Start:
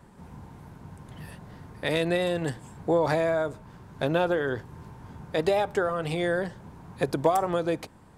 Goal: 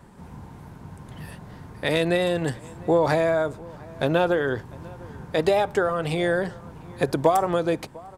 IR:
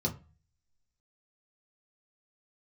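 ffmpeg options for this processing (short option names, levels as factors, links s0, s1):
-filter_complex "[0:a]asplit=2[s0][s1];[s1]adelay=699.7,volume=0.0794,highshelf=f=4000:g=-15.7[s2];[s0][s2]amix=inputs=2:normalize=0,volume=1.5"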